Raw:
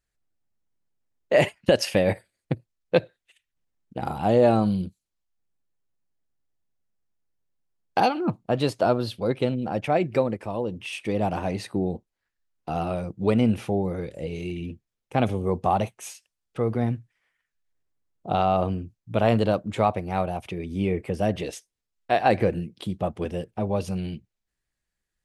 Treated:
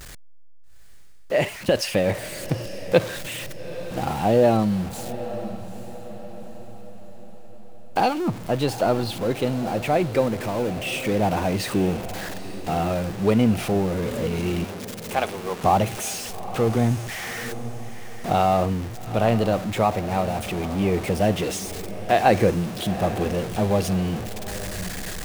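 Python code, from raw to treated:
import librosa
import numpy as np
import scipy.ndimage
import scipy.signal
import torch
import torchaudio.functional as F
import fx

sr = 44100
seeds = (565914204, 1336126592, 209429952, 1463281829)

y = x + 0.5 * 10.0 ** (-29.5 / 20.0) * np.sign(x)
y = fx.highpass(y, sr, hz=670.0, slope=12, at=(14.64, 15.64))
y = fx.rider(y, sr, range_db=4, speed_s=2.0)
y = fx.echo_diffused(y, sr, ms=855, feedback_pct=47, wet_db=-13)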